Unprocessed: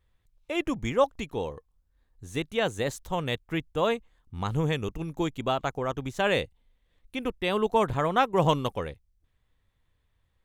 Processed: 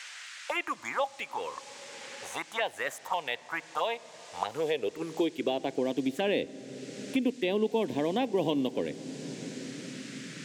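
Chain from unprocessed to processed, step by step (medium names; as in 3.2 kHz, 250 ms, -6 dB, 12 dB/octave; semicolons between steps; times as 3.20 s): in parallel at +2 dB: peak limiter -19.5 dBFS, peak gain reduction 10 dB; on the sum: high-pass sweep 860 Hz -> 270 Hz, 3.95–5.89 s; touch-sensitive phaser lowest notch 260 Hz, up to 1.3 kHz, full sweep at -18.5 dBFS; band noise 1.5–7.9 kHz -52 dBFS; on a send at -19 dB: reverberation RT60 3.4 s, pre-delay 3 ms; on the sum: three bands compressed up and down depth 70%; trim -7 dB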